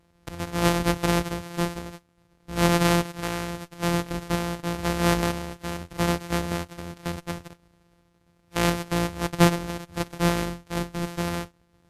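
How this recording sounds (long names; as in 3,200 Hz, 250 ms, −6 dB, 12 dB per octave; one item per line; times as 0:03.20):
a buzz of ramps at a fixed pitch in blocks of 256 samples
sample-and-hold tremolo 2.3 Hz
Ogg Vorbis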